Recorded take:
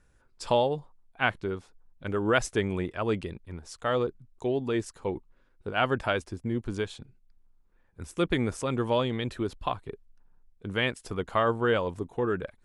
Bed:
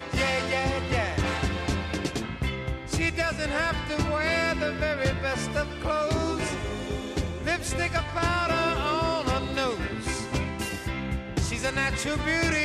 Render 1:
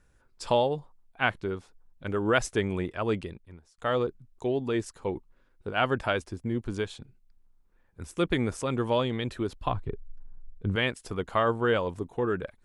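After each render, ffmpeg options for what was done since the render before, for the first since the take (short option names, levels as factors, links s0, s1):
-filter_complex "[0:a]asettb=1/sr,asplit=3[s0][s1][s2];[s0]atrim=end=9.674[s3];[s1]atrim=start=9.67:end=10.76,asetpts=PTS-STARTPTS,afade=t=in:d=0.004:c=qsin,afade=t=out:st=1.086:d=0.004:c=qsin,aemphasis=mode=reproduction:type=bsi[s4];[s2]atrim=start=10.756[s5];[s3][s4]acrossfade=d=0.004:c1=hsin:c2=qsin[s6];[s6][s5]acrossfade=d=0.004:c1=qsin:c2=hsin,asplit=2[s7][s8];[s7]atrim=end=3.78,asetpts=PTS-STARTPTS,afade=t=out:st=3.15:d=0.63[s9];[s8]atrim=start=3.78,asetpts=PTS-STARTPTS,afade=t=in:d=0.004:c=hsin[s10];[s9][s10]concat=n=2:v=0:a=1"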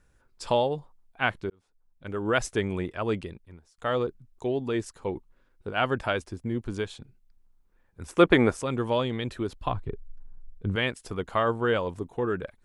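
-filter_complex "[0:a]asettb=1/sr,asplit=3[s0][s1][s2];[s0]atrim=end=8.084[s3];[s1]atrim=start=8.08:end=8.52,asetpts=PTS-STARTPTS,afade=t=in:d=0.004:c=qsin,afade=t=out:st=0.436:d=0.004:c=qsin,equalizer=f=860:w=0.32:g=12[s4];[s2]atrim=start=8.516[s5];[s3][s4]acrossfade=d=0.004:c1=hsin:c2=qsin[s6];[s6][s5]acrossfade=d=0.004:c1=qsin:c2=hsin,asplit=2[s7][s8];[s7]atrim=end=1.5,asetpts=PTS-STARTPTS,afade=t=out:st=1.496:d=0.004:c=hsin[s9];[s8]atrim=start=1.5,asetpts=PTS-STARTPTS,afade=t=in:d=0.93[s10];[s9][s10]concat=n=2:v=0:a=1"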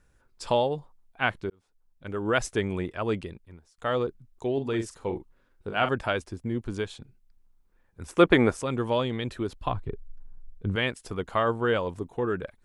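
-filter_complex "[0:a]asettb=1/sr,asplit=3[s0][s1][s2];[s0]atrim=end=4.534[s3];[s1]atrim=start=4.53:end=5.89,asetpts=PTS-STARTPTS,afade=t=in:d=0.004:c=qsin,afade=t=out:st=1.356:d=0.004:c=qsin,asplit=2[s4][s5];[s5]adelay=44,volume=0.376[s6];[s4][s6]amix=inputs=2:normalize=0,atrim=end_sample=59976[s7];[s2]atrim=start=5.886[s8];[s3][s7]acrossfade=d=0.004:c1=hsin:c2=qsin[s9];[s9][s8]acrossfade=d=0.004:c1=qsin:c2=hsin"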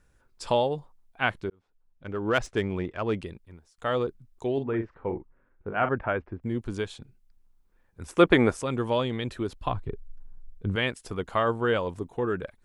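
-filter_complex "[0:a]asettb=1/sr,asplit=3[s0][s1][s2];[s0]atrim=end=1.484[s3];[s1]atrim=start=1.48:end=3.19,asetpts=PTS-STARTPTS,afade=t=in:d=0.004:c=qsin,afade=t=out:st=1.706:d=0.004:c=qsin,adynamicsmooth=sensitivity=3.5:basefreq=3800[s4];[s2]atrim=start=3.186[s5];[s3][s4]acrossfade=d=0.004:c1=hsin:c2=qsin[s6];[s6][s5]acrossfade=d=0.004:c1=qsin:c2=hsin,asettb=1/sr,asplit=3[s7][s8][s9];[s7]atrim=end=4.634[s10];[s8]atrim=start=4.63:end=6.43,asetpts=PTS-STARTPTS,afade=t=in:d=0.004:c=qsin,afade=t=out:st=1.796:d=0.004:c=qsin,lowpass=f=2100:w=0.5412,lowpass=f=2100:w=1.3066[s11];[s9]atrim=start=6.426[s12];[s10][s11]acrossfade=d=0.004:c1=hsin:c2=qsin[s13];[s13][s12]acrossfade=d=0.004:c1=qsin:c2=hsin"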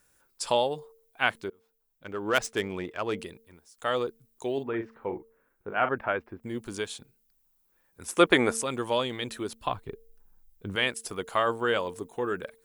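-af "aemphasis=mode=production:type=bsi,bandreject=f=225.9:t=h:w=4,bandreject=f=451.8:t=h:w=4"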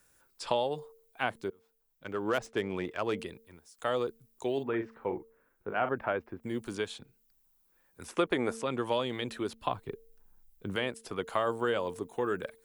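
-filter_complex "[0:a]acrossover=split=100|950|4400[s0][s1][s2][s3];[s0]acompressor=threshold=0.00158:ratio=4[s4];[s1]acompressor=threshold=0.0447:ratio=4[s5];[s2]acompressor=threshold=0.0158:ratio=4[s6];[s3]acompressor=threshold=0.00224:ratio=4[s7];[s4][s5][s6][s7]amix=inputs=4:normalize=0"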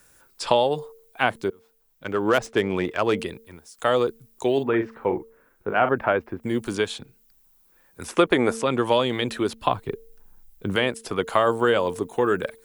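-af "volume=3.16"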